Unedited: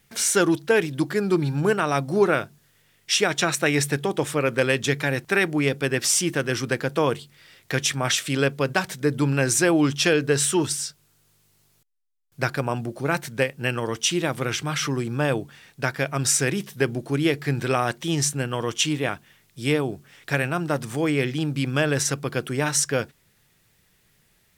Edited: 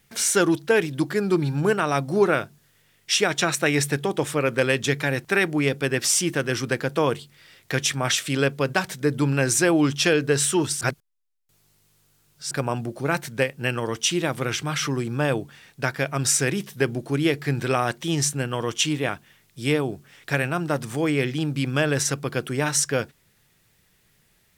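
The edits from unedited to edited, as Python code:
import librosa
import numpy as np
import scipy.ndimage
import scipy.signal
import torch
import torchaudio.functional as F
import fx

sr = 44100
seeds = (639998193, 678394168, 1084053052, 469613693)

y = fx.edit(x, sr, fx.reverse_span(start_s=10.81, length_s=1.7), tone=tone)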